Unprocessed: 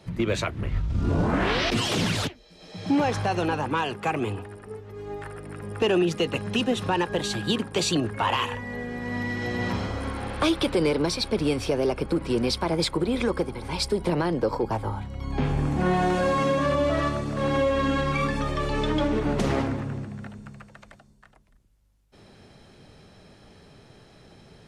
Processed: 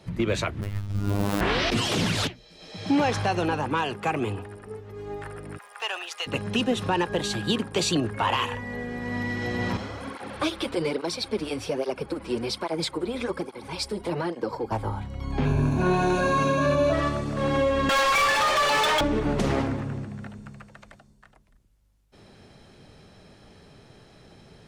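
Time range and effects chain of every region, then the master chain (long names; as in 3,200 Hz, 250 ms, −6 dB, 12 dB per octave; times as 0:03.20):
0:00.61–0:01.41: gap after every zero crossing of 0.18 ms + high-shelf EQ 6,900 Hz +7 dB + phases set to zero 101 Hz
0:02.17–0:03.31: parametric band 3,500 Hz +3.5 dB 2.4 octaves + mains-hum notches 60/120/180 Hz
0:05.57–0:06.26: high-pass filter 790 Hz 24 dB per octave + surface crackle 170 per second −45 dBFS
0:09.77–0:14.72: low-shelf EQ 110 Hz −11.5 dB + through-zero flanger with one copy inverted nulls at 1.2 Hz, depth 7.8 ms
0:15.45–0:16.93: notch filter 1,900 Hz, Q 6.6 + slack as between gear wheels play −52.5 dBFS + EQ curve with evenly spaced ripples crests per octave 1.5, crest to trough 12 dB
0:17.89–0:19.01: high-pass filter 550 Hz 24 dB per octave + mid-hump overdrive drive 27 dB, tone 6,500 Hz, clips at −15 dBFS
whole clip: no processing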